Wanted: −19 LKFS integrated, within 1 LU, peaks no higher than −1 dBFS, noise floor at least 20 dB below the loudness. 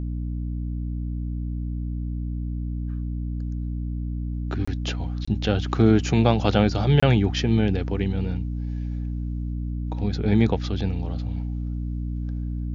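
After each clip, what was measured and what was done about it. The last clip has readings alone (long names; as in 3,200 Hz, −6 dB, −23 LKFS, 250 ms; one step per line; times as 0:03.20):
number of dropouts 3; longest dropout 25 ms; mains hum 60 Hz; hum harmonics up to 300 Hz; level of the hum −26 dBFS; integrated loudness −25.5 LKFS; sample peak −3.0 dBFS; target loudness −19.0 LKFS
→ repair the gap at 0:04.65/0:05.25/0:07.00, 25 ms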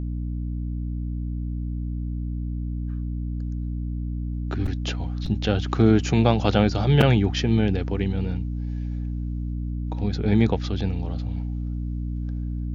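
number of dropouts 0; mains hum 60 Hz; hum harmonics up to 300 Hz; level of the hum −26 dBFS
→ hum removal 60 Hz, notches 5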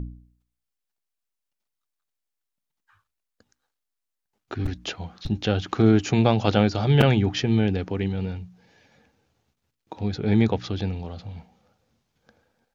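mains hum none found; integrated loudness −23.0 LKFS; sample peak −3.0 dBFS; target loudness −19.0 LKFS
→ level +4 dB
brickwall limiter −1 dBFS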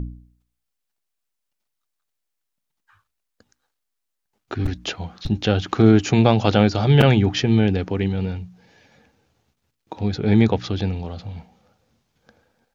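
integrated loudness −19.5 LKFS; sample peak −1.0 dBFS; background noise floor −79 dBFS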